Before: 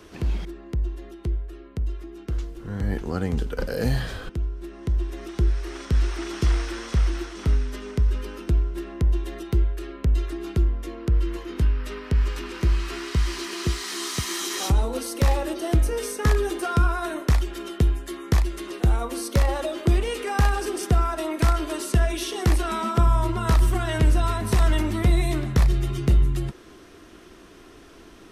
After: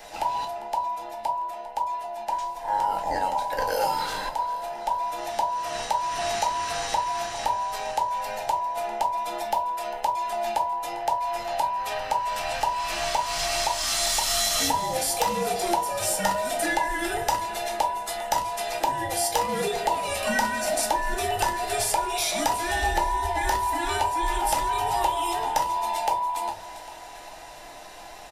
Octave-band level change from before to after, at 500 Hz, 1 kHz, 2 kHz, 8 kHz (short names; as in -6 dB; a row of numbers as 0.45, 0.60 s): +1.0, +10.0, +3.0, +7.0 dB